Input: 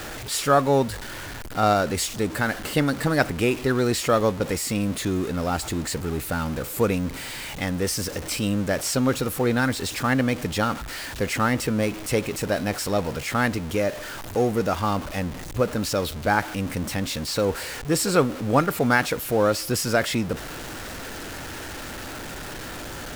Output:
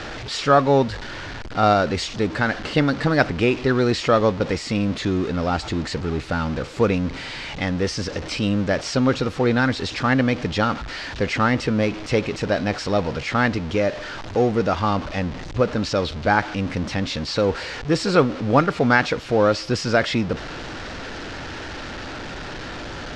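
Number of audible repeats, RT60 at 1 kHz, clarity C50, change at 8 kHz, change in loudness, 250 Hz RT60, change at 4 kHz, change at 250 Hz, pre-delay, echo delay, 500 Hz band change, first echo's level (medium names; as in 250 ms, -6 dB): no echo, no reverb, no reverb, -7.5 dB, +3.0 dB, no reverb, +2.0 dB, +3.0 dB, no reverb, no echo, +3.0 dB, no echo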